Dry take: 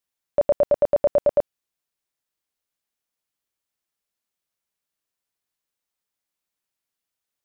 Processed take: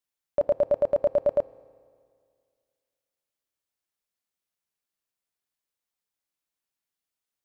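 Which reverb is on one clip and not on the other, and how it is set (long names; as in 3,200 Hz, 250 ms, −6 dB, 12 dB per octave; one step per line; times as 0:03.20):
feedback delay network reverb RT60 2.1 s, low-frequency decay 1×, high-frequency decay 0.95×, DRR 16.5 dB
level −4 dB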